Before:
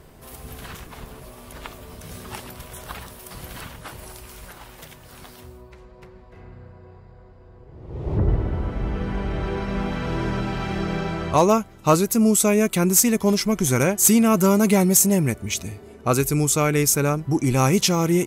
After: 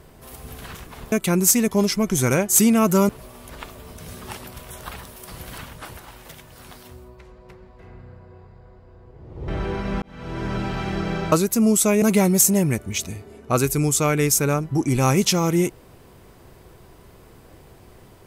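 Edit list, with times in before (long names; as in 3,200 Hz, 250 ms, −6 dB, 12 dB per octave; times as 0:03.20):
0:04.00–0:04.50: remove
0:08.01–0:09.31: remove
0:09.85–0:10.42: fade in
0:11.15–0:11.91: remove
0:12.61–0:14.58: move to 0:01.12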